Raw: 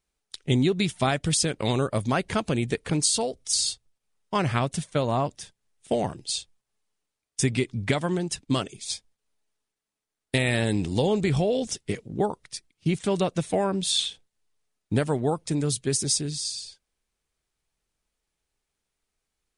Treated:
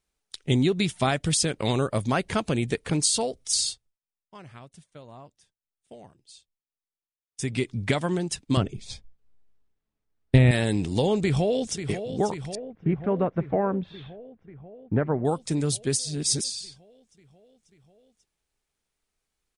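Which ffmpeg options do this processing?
ffmpeg -i in.wav -filter_complex "[0:a]asettb=1/sr,asplit=3[link_01][link_02][link_03];[link_01]atrim=end=8.574[link_04];[link_02]atrim=start=8.57:end=10.51,asetpts=PTS-STARTPTS,afade=type=in:duration=0.004:curve=qsin,afade=type=out:start_time=1.936:duration=0.004:curve=qsin,aemphasis=mode=reproduction:type=riaa[link_05];[link_03]atrim=start=10.506[link_06];[link_04][link_05]acrossfade=duration=0.004:curve1=hsin:curve2=qsin[link_07];[link_07][link_06]acrossfade=duration=0.004:curve1=qsin:curve2=hsin,asplit=2[link_08][link_09];[link_09]afade=type=in:start_time=11.2:duration=0.01,afade=type=out:start_time=11.83:duration=0.01,aecho=0:1:540|1080|1620|2160|2700|3240|3780|4320|4860|5400|5940|6480:0.334965|0.251224|0.188418|0.141314|0.105985|0.0794889|0.0596167|0.0447125|0.0335344|0.0251508|0.0188631|0.0141473[link_10];[link_08][link_10]amix=inputs=2:normalize=0,asettb=1/sr,asplit=3[link_11][link_12][link_13];[link_11]atrim=end=12.554[link_14];[link_12]atrim=start=12.55:end=15.25,asetpts=PTS-STARTPTS,afade=type=in:duration=0.004:curve=qsin,afade=type=out:start_time=2.696:duration=0.004:curve=qsin,lowpass=frequency=1800:width=0.5412,lowpass=frequency=1800:width=1.3066[link_15];[link_13]atrim=start=15.246[link_16];[link_14][link_15]acrossfade=duration=0.004:curve1=hsin:curve2=qsin[link_17];[link_17][link_16]acrossfade=duration=0.004:curve1=qsin:curve2=hsin,asplit=5[link_18][link_19][link_20][link_21][link_22];[link_18]atrim=end=4,asetpts=PTS-STARTPTS,afade=type=out:start_time=3.6:duration=0.4:silence=0.0891251[link_23];[link_19]atrim=start=4:end=7.27,asetpts=PTS-STARTPTS,volume=-21dB[link_24];[link_20]atrim=start=7.27:end=15.992,asetpts=PTS-STARTPTS,afade=type=in:duration=0.4:silence=0.0891251[link_25];[link_21]atrim=start=15.988:end=16.442,asetpts=PTS-STARTPTS,areverse[link_26];[link_22]atrim=start=16.438[link_27];[link_23][link_24][link_25]concat=n=3:v=0:a=1[link_28];[link_28][link_26]acrossfade=duration=0.004:curve1=hsin:curve2=hsin[link_29];[link_29][link_27]acrossfade=duration=0.004:curve1=hsin:curve2=hsin" out.wav

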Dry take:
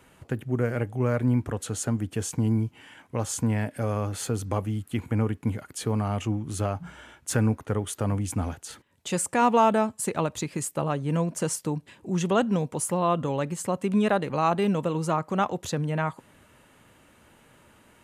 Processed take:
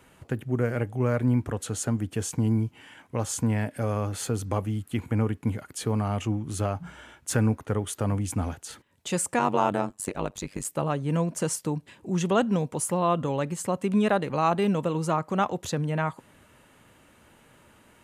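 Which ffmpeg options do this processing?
ffmpeg -i in.wav -filter_complex "[0:a]asettb=1/sr,asplit=3[link_01][link_02][link_03];[link_01]atrim=end=9.394[link_04];[link_02]atrim=start=9.39:end=10.65,asetpts=PTS-STARTPTS,afade=type=in:duration=0.004:curve=qsin,afade=type=out:start_time=1.256:duration=0.004:curve=qsin,tremolo=f=97:d=0.974[link_05];[link_03]atrim=start=10.646[link_06];[link_04][link_05]acrossfade=duration=0.004:curve1=hsin:curve2=qsin[link_07];[link_07][link_06]acrossfade=duration=0.004:curve1=qsin:curve2=hsin" out.wav

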